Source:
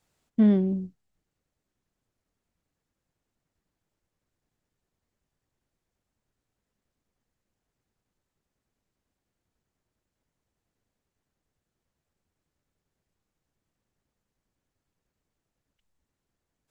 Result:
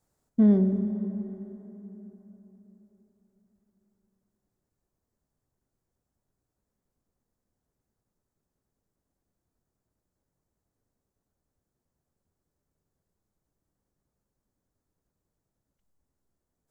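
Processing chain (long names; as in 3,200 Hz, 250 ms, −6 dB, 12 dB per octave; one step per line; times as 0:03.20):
parametric band 2,800 Hz −14 dB 1.4 octaves
dense smooth reverb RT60 4.1 s, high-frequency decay 0.6×, DRR 7 dB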